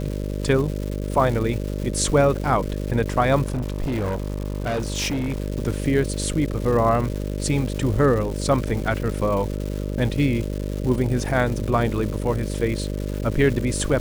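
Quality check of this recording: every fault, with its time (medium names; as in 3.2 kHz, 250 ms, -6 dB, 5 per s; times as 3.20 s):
buzz 50 Hz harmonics 12 -27 dBFS
crackle 380 per s -29 dBFS
3.46–5.40 s: clipped -21 dBFS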